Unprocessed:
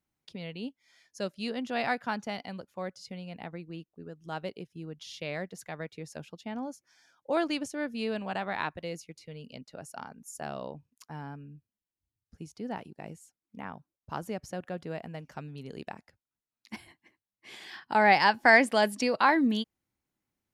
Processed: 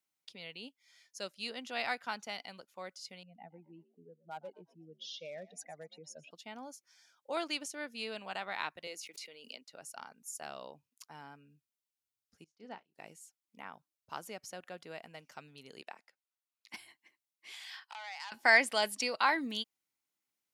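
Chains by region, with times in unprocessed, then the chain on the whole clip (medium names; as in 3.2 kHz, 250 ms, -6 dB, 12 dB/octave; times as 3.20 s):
3.23–6.31 s: spectral contrast enhancement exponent 2.3 + hard clipper -29.5 dBFS + frequency-shifting echo 120 ms, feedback 34%, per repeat +58 Hz, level -20.5 dB
8.87–9.64 s: high-pass 240 Hz 24 dB/octave + swell ahead of each attack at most 23 dB/s
12.44–12.95 s: distance through air 96 m + doubling 32 ms -10 dB + upward expansion 2.5:1, over -47 dBFS
15.82–16.74 s: steep high-pass 150 Hz + tone controls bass -14 dB, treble -5 dB
17.52–18.32 s: high-pass 720 Hz 24 dB/octave + compression 4:1, threshold -38 dBFS + transformer saturation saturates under 1.9 kHz
whole clip: high-pass 470 Hz 6 dB/octave; tilt shelf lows -4.5 dB, about 1.5 kHz; band-stop 1.7 kHz, Q 15; trim -3 dB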